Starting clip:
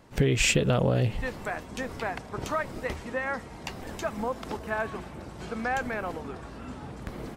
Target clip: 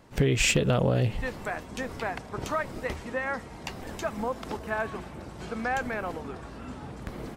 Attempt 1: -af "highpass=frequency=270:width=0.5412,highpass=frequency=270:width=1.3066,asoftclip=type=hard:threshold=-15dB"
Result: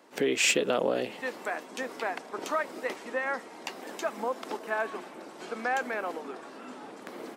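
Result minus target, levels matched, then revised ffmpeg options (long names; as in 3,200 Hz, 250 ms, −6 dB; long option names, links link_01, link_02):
250 Hz band −3.5 dB
-af "asoftclip=type=hard:threshold=-15dB"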